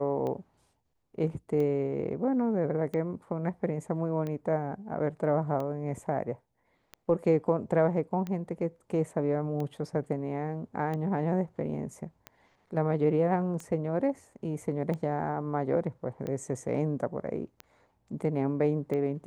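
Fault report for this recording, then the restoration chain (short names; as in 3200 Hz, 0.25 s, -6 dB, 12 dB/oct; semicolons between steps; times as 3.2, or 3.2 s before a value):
tick 45 rpm -24 dBFS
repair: de-click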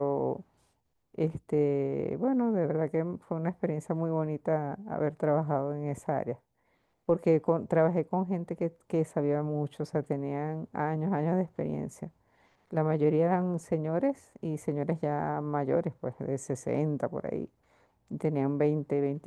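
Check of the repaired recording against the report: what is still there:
none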